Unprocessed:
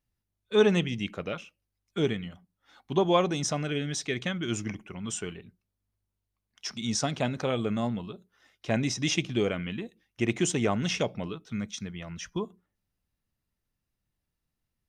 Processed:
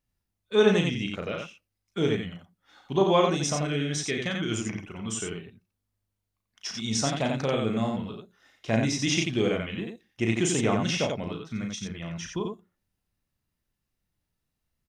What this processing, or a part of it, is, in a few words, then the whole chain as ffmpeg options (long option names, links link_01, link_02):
slapback doubling: -filter_complex "[0:a]asplit=3[link_01][link_02][link_03];[link_02]adelay=36,volume=-5dB[link_04];[link_03]adelay=89,volume=-4dB[link_05];[link_01][link_04][link_05]amix=inputs=3:normalize=0"